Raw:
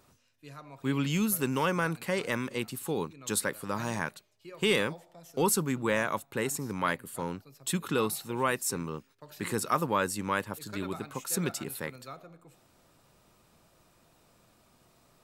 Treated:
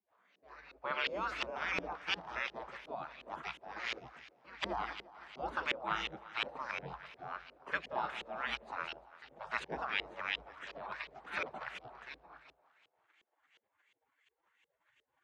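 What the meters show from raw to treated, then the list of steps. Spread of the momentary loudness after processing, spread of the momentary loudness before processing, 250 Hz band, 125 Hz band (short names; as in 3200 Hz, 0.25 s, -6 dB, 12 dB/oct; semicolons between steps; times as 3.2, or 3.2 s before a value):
15 LU, 12 LU, -20.0 dB, -21.5 dB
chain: synth low-pass 5200 Hz, resonance Q 4.3; spectral gate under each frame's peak -20 dB weak; frequency shift +52 Hz; on a send: thinning echo 0.172 s, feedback 65%, high-pass 150 Hz, level -16.5 dB; on the sum: LFO low-pass saw up 2.8 Hz 410–3000 Hz; in parallel at -1.5 dB: compressor, threshold -40 dBFS, peak gain reduction 8.5 dB; on the sum: gain +1 dB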